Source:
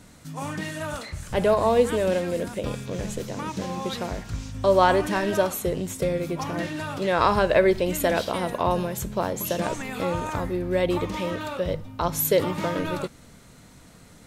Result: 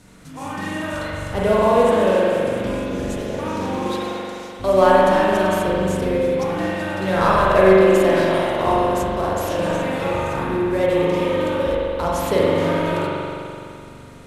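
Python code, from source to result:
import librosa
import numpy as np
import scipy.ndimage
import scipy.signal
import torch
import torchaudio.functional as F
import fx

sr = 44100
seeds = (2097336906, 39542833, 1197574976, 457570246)

y = fx.cvsd(x, sr, bps=64000)
y = fx.highpass(y, sr, hz=1300.0, slope=6, at=(3.9, 4.6))
y = fx.rev_spring(y, sr, rt60_s=2.6, pass_ms=(42,), chirp_ms=75, drr_db=-6.5)
y = y * 10.0 ** (-1.0 / 20.0)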